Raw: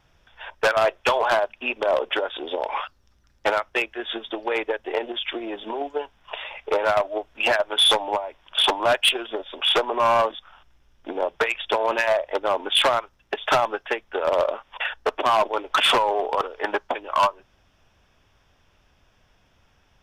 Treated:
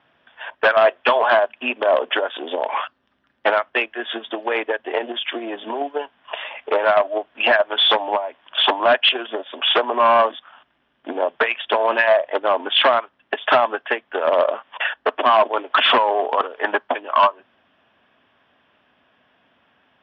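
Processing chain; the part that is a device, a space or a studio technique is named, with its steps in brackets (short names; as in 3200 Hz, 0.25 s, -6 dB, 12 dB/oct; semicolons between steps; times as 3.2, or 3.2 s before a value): kitchen radio (speaker cabinet 200–3400 Hz, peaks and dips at 250 Hz +8 dB, 660 Hz +5 dB, 1100 Hz +4 dB, 1700 Hz +6 dB, 3100 Hz +5 dB); gain +1 dB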